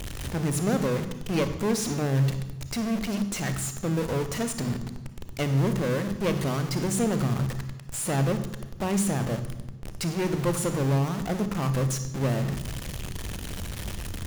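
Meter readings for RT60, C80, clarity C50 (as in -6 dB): 1.1 s, 12.5 dB, 10.0 dB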